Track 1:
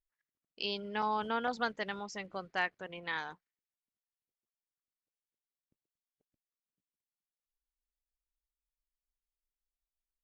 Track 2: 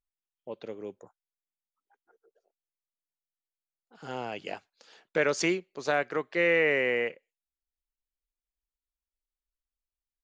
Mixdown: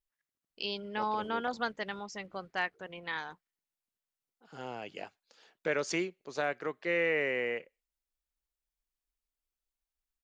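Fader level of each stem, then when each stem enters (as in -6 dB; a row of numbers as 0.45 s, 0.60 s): 0.0 dB, -5.5 dB; 0.00 s, 0.50 s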